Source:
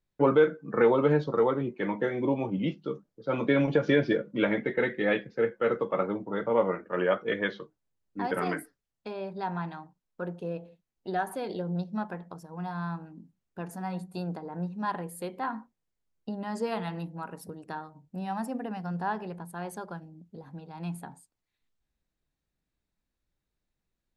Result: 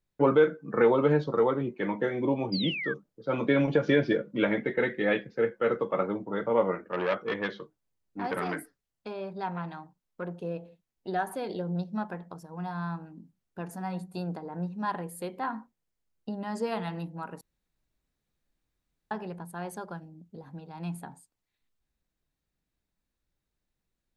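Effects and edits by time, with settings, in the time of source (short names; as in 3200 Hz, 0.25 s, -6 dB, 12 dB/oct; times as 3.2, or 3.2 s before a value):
2.52–2.94 painted sound fall 1500–5000 Hz -34 dBFS
6.85–10.31 core saturation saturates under 1200 Hz
17.41–19.11 room tone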